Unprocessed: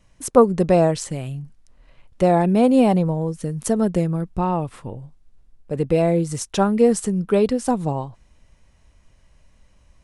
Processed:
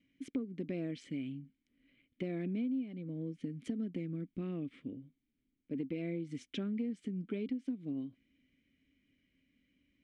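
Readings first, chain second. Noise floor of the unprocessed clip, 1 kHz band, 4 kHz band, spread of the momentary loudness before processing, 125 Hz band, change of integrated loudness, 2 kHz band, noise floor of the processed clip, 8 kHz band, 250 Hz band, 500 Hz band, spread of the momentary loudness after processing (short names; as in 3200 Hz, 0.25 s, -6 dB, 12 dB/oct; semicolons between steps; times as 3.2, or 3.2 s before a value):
-57 dBFS, -38.0 dB, -17.0 dB, 15 LU, -19.5 dB, -20.0 dB, -18.0 dB, -83 dBFS, under -30 dB, -16.5 dB, -26.0 dB, 7 LU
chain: vowel filter i; compressor 10:1, threshold -36 dBFS, peak gain reduction 21 dB; LPF 3900 Hz 6 dB/oct; gain +2 dB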